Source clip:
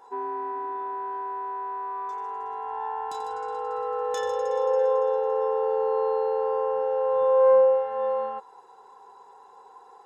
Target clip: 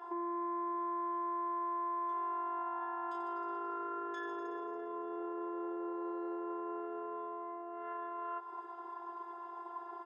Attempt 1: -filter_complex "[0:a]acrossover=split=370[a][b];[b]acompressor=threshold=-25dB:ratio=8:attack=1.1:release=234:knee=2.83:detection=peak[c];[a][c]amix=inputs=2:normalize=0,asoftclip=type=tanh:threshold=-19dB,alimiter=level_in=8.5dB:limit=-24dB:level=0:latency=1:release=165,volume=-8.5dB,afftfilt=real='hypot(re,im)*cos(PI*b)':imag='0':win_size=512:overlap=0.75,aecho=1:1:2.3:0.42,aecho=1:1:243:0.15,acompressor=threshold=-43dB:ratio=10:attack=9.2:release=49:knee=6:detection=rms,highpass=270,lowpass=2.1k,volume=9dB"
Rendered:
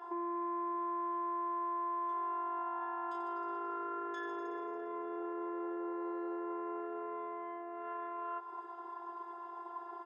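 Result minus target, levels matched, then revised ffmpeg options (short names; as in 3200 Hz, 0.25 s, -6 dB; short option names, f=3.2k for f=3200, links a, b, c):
soft clip: distortion +18 dB
-filter_complex "[0:a]acrossover=split=370[a][b];[b]acompressor=threshold=-25dB:ratio=8:attack=1.1:release=234:knee=2.83:detection=peak[c];[a][c]amix=inputs=2:normalize=0,asoftclip=type=tanh:threshold=-9dB,alimiter=level_in=8.5dB:limit=-24dB:level=0:latency=1:release=165,volume=-8.5dB,afftfilt=real='hypot(re,im)*cos(PI*b)':imag='0':win_size=512:overlap=0.75,aecho=1:1:2.3:0.42,aecho=1:1:243:0.15,acompressor=threshold=-43dB:ratio=10:attack=9.2:release=49:knee=6:detection=rms,highpass=270,lowpass=2.1k,volume=9dB"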